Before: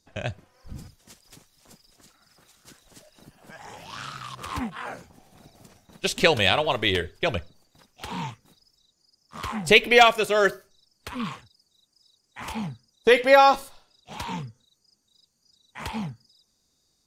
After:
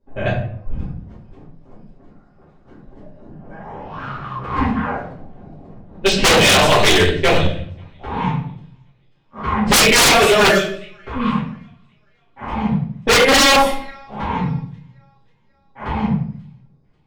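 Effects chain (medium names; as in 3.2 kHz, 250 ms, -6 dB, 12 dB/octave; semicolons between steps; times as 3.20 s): on a send: feedback echo behind a high-pass 539 ms, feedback 48%, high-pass 5.6 kHz, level -5.5 dB; on the sum: level-controlled noise filter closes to 730 Hz, open at -18.5 dBFS; simulated room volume 83 m³, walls mixed, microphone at 2.4 m; wavefolder -8.5 dBFS; trim +2 dB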